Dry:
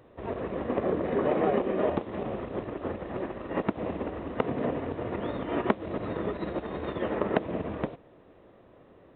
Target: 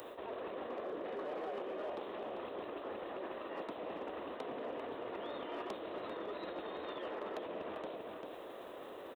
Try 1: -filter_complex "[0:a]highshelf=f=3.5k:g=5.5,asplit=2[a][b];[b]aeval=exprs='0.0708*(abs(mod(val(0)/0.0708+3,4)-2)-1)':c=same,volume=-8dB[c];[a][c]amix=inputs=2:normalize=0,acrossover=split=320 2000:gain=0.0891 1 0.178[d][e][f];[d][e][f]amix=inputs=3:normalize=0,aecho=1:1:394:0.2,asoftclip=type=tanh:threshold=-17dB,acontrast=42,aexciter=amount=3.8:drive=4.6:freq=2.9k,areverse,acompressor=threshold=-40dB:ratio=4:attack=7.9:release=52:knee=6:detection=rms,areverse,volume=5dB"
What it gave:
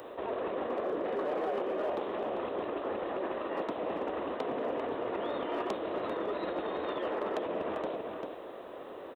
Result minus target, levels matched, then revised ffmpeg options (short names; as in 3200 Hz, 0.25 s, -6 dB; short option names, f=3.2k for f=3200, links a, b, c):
compressor: peak gain reduction -9 dB; 4000 Hz band -4.0 dB
-filter_complex "[0:a]highshelf=f=3.5k:g=15.5,asplit=2[a][b];[b]aeval=exprs='0.0708*(abs(mod(val(0)/0.0708+3,4)-2)-1)':c=same,volume=-8dB[c];[a][c]amix=inputs=2:normalize=0,acrossover=split=320 2000:gain=0.0891 1 0.178[d][e][f];[d][e][f]amix=inputs=3:normalize=0,aecho=1:1:394:0.2,asoftclip=type=tanh:threshold=-17dB,acontrast=42,aexciter=amount=3.8:drive=4.6:freq=2.9k,areverse,acompressor=threshold=-51.5dB:ratio=4:attack=7.9:release=52:knee=6:detection=rms,areverse,volume=5dB"